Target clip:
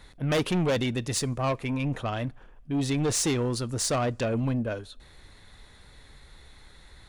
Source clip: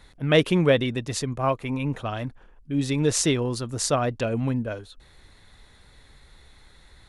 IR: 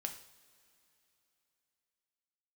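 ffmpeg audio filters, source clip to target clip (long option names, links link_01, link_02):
-filter_complex "[0:a]asettb=1/sr,asplit=3[link_01][link_02][link_03];[link_01]atrim=end=0.784[link_04];[link_02]atrim=start=0.78:end=1.37,asetpts=PTS-STARTPTS,afade=type=in:duration=0.004:curve=qsin,afade=type=out:start_time=0.586:duration=0.004:curve=qsin,highshelf=frequency=8500:gain=8[link_05];[link_03]atrim=start=1.366[link_06];[link_04][link_05]acrossfade=duration=0.004:curve1=hsin:curve2=qsin[link_07];[link_07][link_06]acrossfade=duration=0.004:curve1=qsin:curve2=hsin,asoftclip=type=tanh:threshold=-22.5dB,asplit=2[link_08][link_09];[1:a]atrim=start_sample=2205,asetrate=79380,aresample=44100[link_10];[link_09][link_10]afir=irnorm=-1:irlink=0,volume=-9.5dB[link_11];[link_08][link_11]amix=inputs=2:normalize=0"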